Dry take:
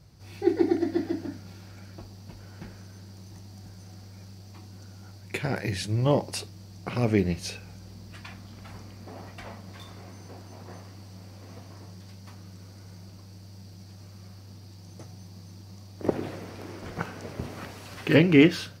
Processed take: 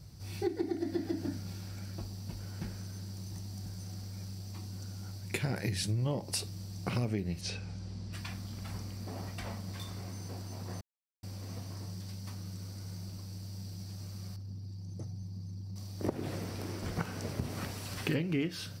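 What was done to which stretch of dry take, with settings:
7.41–8.13 s: distance through air 85 m
10.81–11.23 s: mute
14.36–15.76 s: resonances exaggerated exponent 1.5
whole clip: tone controls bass +6 dB, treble +8 dB; band-stop 6.6 kHz, Q 15; compression 10:1, threshold -27 dBFS; trim -2 dB

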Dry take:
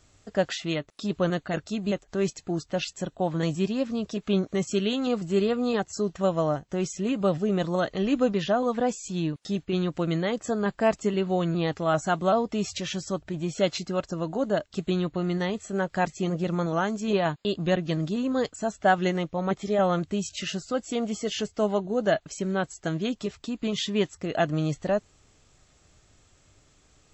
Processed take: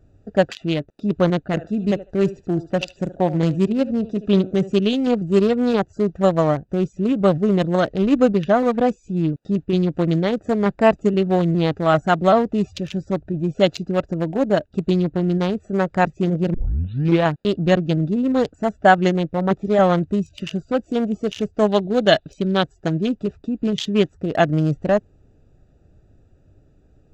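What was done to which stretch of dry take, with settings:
1.46–4.73 s: thinning echo 74 ms, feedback 24%, high-pass 740 Hz, level -7 dB
16.54 s: tape start 0.71 s
21.67–22.64 s: peaking EQ 3.6 kHz +14.5 dB 0.76 oct
whole clip: local Wiener filter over 41 samples; trim +8.5 dB

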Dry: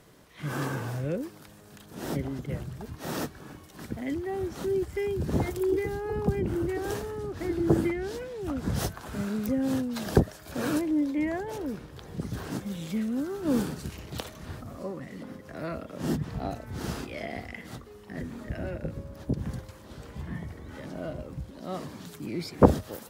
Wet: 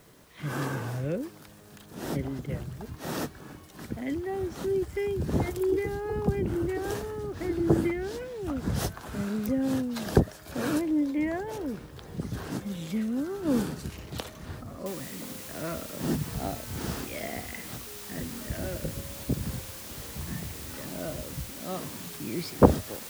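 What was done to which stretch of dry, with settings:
14.86 s: noise floor step -65 dB -43 dB

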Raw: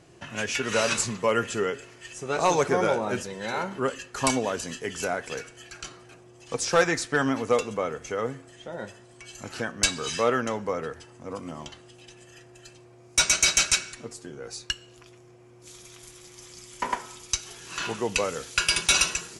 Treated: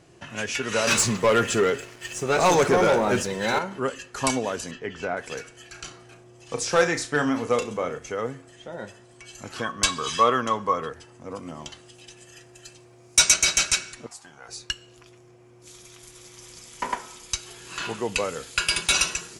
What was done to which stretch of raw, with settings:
0.87–3.59 s: waveshaping leveller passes 2
4.71–5.17 s: low-pass 2.9 kHz
5.67–7.99 s: flutter echo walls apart 5.8 m, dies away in 0.22 s
9.56–10.89 s: small resonant body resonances 1.1/3.3 kHz, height 18 dB
11.65–13.34 s: treble shelf 3.4 kHz +6.5 dB
14.06–14.49 s: resonant low shelf 590 Hz -10 dB, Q 3
15.73–16.51 s: echo throw 410 ms, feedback 80%, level -4.5 dB
17.21–18.93 s: band-stop 5.8 kHz, Q 9.9

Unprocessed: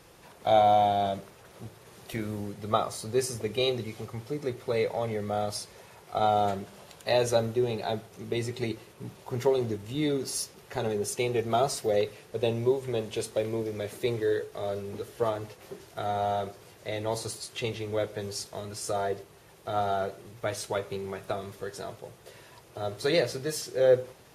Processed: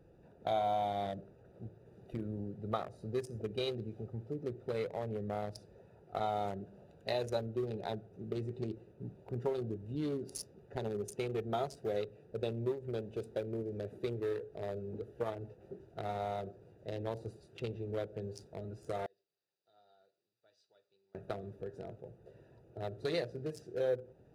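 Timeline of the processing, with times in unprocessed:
19.06–21.15 s: band-pass filter 4.6 kHz, Q 4.4
whole clip: local Wiener filter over 41 samples; compression 2:1, threshold -33 dBFS; trim -3 dB

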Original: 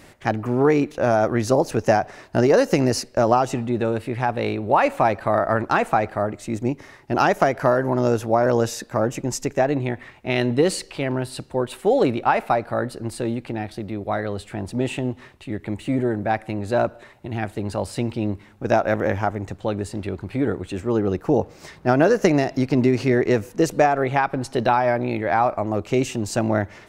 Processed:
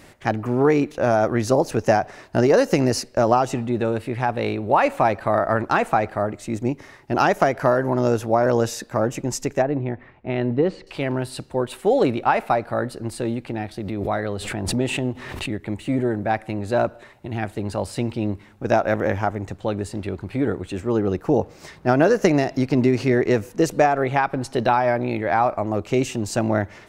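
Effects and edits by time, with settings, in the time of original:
9.62–10.87 s: tape spacing loss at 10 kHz 38 dB
13.80–15.63 s: swell ahead of each attack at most 39 dB/s

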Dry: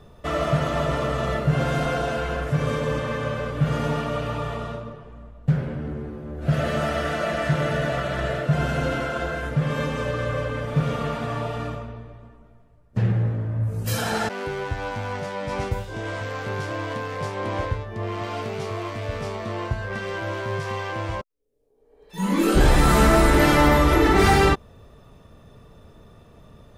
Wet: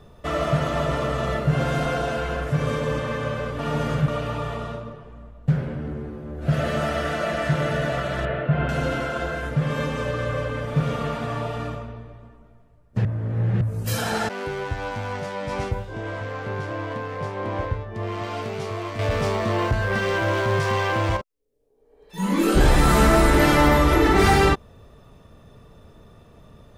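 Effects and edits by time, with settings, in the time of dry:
3.59–4.08 s: reverse
8.25–8.69 s: low-pass 3 kHz 24 dB/octave
13.05–13.61 s: reverse
15.71–17.95 s: treble shelf 3.4 kHz -10.5 dB
18.99–21.17 s: waveshaping leveller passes 2

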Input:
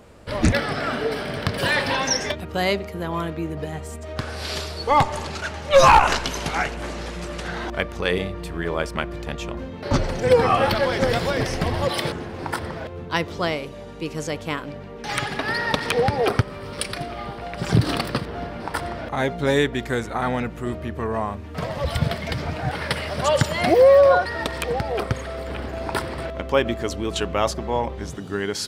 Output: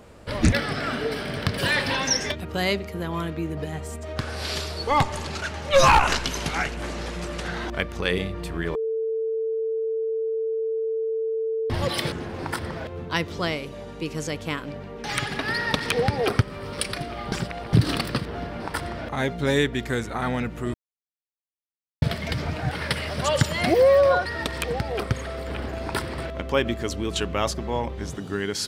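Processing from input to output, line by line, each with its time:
8.75–11.70 s: bleep 446 Hz -20 dBFS
17.32–17.73 s: reverse
20.74–22.02 s: mute
whole clip: dynamic bell 740 Hz, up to -5 dB, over -33 dBFS, Q 0.77

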